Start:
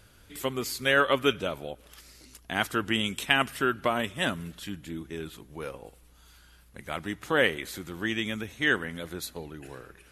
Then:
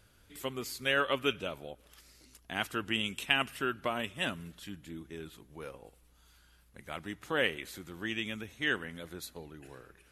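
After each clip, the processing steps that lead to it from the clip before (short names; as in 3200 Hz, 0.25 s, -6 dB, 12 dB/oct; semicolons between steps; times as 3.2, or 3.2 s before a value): dynamic EQ 2700 Hz, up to +7 dB, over -46 dBFS, Q 4.7; gain -7 dB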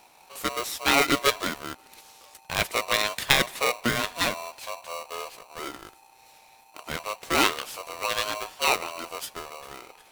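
polarity switched at an audio rate 840 Hz; gain +8 dB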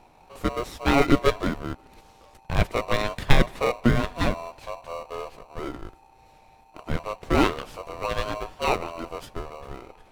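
tilt -4 dB/oct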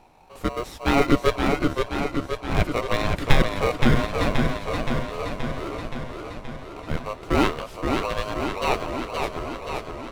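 warbling echo 0.524 s, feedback 66%, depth 98 cents, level -4.5 dB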